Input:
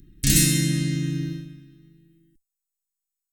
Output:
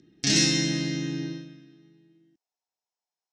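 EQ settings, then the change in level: cabinet simulation 230–5600 Hz, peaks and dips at 450 Hz +6 dB, 920 Hz +9 dB, 5.6 kHz +9 dB; peaking EQ 730 Hz +14.5 dB 0.41 oct; 0.0 dB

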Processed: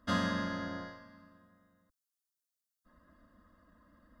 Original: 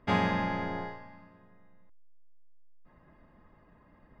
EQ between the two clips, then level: high-pass 130 Hz 6 dB/octave; static phaser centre 340 Hz, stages 4; static phaser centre 970 Hz, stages 4; +7.5 dB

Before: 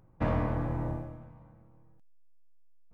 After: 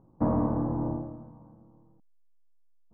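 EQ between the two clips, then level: four-pole ladder low-pass 1.2 kHz, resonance 45%; peaking EQ 260 Hz +13.5 dB 1.7 oct; +3.5 dB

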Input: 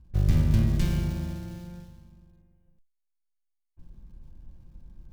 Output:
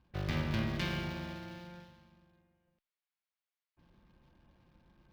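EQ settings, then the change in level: high-pass 1.3 kHz 6 dB/octave; distance through air 330 m; treble shelf 6.2 kHz +11 dB; +8.5 dB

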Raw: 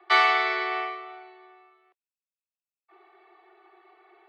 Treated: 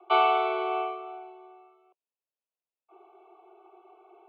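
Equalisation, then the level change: Butterworth band-stop 1.8 kHz, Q 1.3; distance through air 240 m; cabinet simulation 410–2600 Hz, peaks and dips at 820 Hz -4 dB, 1.2 kHz -7 dB, 1.9 kHz -8 dB; +8.0 dB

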